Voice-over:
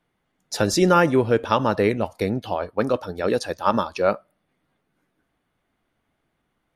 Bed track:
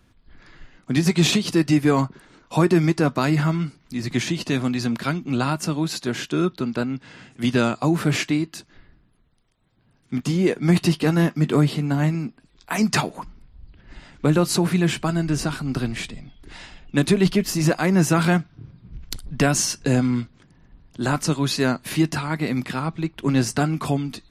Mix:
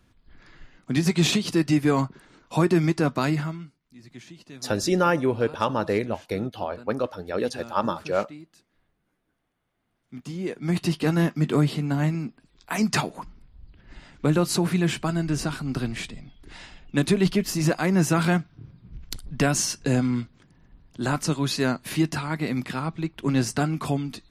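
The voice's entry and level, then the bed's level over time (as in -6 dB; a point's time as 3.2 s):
4.10 s, -4.5 dB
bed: 3.29 s -3 dB
3.8 s -21 dB
9.62 s -21 dB
11.07 s -3 dB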